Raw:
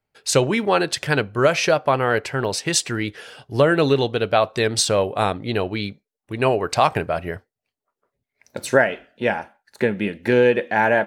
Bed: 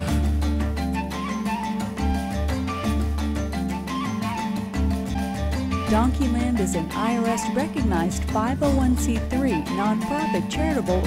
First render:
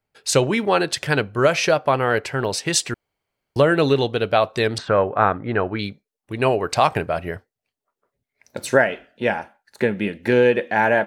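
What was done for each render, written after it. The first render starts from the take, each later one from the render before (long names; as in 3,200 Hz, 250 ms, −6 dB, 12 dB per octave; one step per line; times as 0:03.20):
0:02.94–0:03.56: fill with room tone
0:04.78–0:05.79: low-pass with resonance 1,500 Hz, resonance Q 2.6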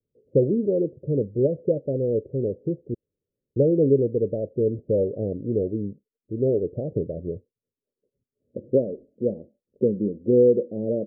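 Butterworth low-pass 540 Hz 72 dB per octave
low-shelf EQ 63 Hz −8 dB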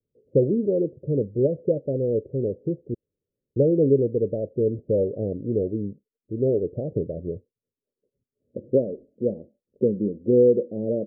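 no processing that can be heard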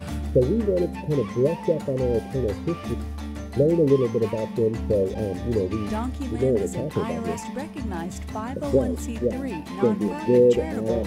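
mix in bed −8 dB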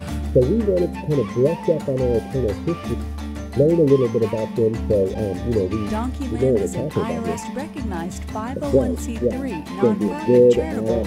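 level +3.5 dB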